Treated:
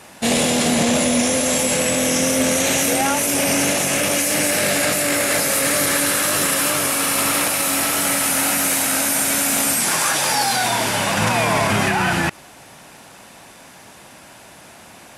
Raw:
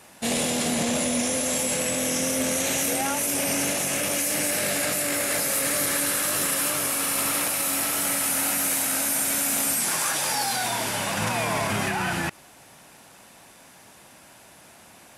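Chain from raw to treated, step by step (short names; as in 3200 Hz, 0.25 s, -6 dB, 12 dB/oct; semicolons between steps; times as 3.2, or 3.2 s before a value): high shelf 9900 Hz -6.5 dB; gain +8 dB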